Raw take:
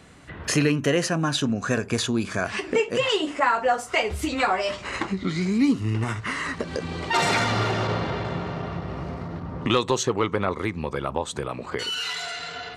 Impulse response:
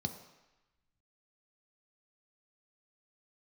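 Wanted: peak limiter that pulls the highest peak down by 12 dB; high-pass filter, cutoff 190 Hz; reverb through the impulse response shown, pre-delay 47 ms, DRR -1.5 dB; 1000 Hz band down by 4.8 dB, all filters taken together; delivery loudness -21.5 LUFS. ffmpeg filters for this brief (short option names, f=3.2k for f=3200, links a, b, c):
-filter_complex "[0:a]highpass=190,equalizer=f=1k:t=o:g=-6.5,alimiter=limit=-21.5dB:level=0:latency=1,asplit=2[a][b];[1:a]atrim=start_sample=2205,adelay=47[c];[b][c]afir=irnorm=-1:irlink=0,volume=0.5dB[d];[a][d]amix=inputs=2:normalize=0,volume=2.5dB"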